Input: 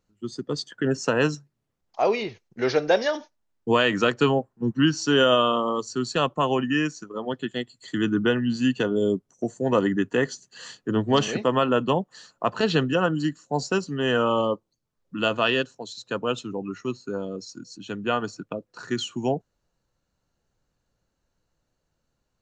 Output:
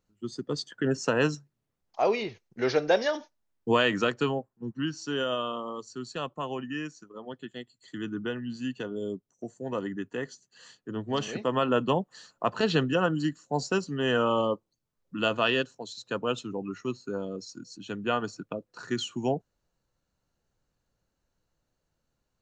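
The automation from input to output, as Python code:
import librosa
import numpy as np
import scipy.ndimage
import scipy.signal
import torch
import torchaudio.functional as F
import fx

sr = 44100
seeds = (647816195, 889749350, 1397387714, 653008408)

y = fx.gain(x, sr, db=fx.line((3.87, -3.0), (4.63, -11.0), (10.95, -11.0), (11.75, -3.0)))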